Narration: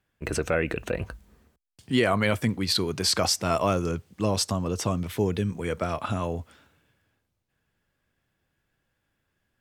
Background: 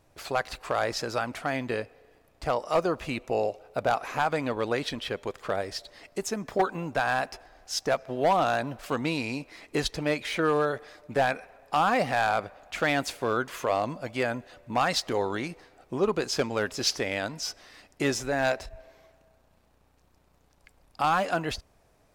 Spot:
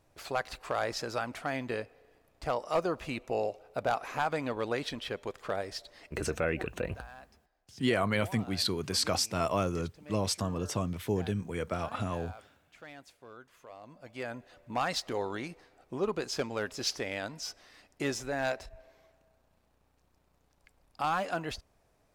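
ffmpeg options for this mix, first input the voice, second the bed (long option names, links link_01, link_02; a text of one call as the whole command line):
ffmpeg -i stem1.wav -i stem2.wav -filter_complex "[0:a]adelay=5900,volume=-5.5dB[link_01];[1:a]volume=13dB,afade=type=out:start_time=6.05:duration=0.29:silence=0.112202,afade=type=in:start_time=13.8:duration=0.83:silence=0.133352[link_02];[link_01][link_02]amix=inputs=2:normalize=0" out.wav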